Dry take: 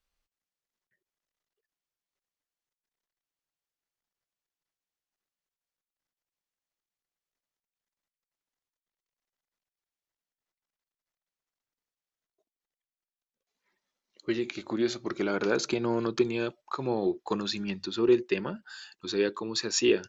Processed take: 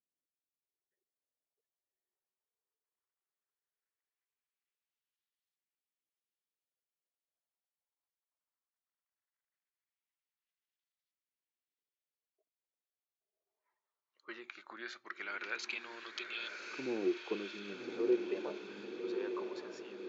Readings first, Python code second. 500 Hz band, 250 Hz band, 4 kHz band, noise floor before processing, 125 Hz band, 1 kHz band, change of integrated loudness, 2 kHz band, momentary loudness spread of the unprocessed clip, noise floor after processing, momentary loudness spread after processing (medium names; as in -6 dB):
-10.5 dB, -11.5 dB, -12.5 dB, under -85 dBFS, -22.0 dB, -11.5 dB, -10.5 dB, -5.5 dB, 9 LU, under -85 dBFS, 14 LU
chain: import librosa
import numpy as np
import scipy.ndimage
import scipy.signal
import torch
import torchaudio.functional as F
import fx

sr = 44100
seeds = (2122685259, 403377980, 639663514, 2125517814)

y = fx.fade_out_tail(x, sr, length_s=1.26)
y = scipy.signal.sosfilt(scipy.signal.butter(2, 110.0, 'highpass', fs=sr, output='sos'), y)
y = fx.filter_lfo_bandpass(y, sr, shape='saw_up', hz=0.18, low_hz=270.0, high_hz=3700.0, q=2.5)
y = fx.tilt_eq(y, sr, slope=1.5)
y = fx.echo_diffused(y, sr, ms=1120, feedback_pct=55, wet_db=-5)
y = y * 10.0 ** (-1.5 / 20.0)